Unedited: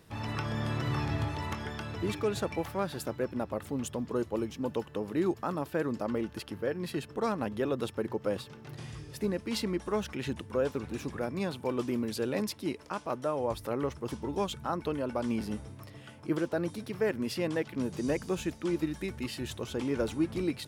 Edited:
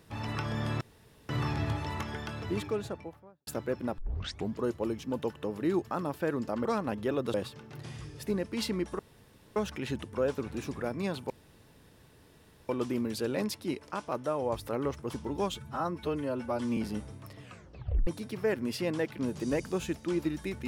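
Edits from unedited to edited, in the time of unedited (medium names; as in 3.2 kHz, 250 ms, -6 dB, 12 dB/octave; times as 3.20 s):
0.81 s: insert room tone 0.48 s
1.94–2.99 s: studio fade out
3.50 s: tape start 0.57 s
6.17–7.19 s: delete
7.88–8.28 s: delete
9.93 s: insert room tone 0.57 s
11.67 s: insert room tone 1.39 s
14.52–15.34 s: stretch 1.5×
15.99 s: tape stop 0.65 s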